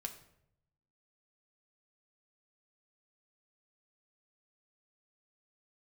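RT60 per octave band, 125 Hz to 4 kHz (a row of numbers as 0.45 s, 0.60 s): 1.2 s, 0.95 s, 0.85 s, 0.65 s, 0.60 s, 0.50 s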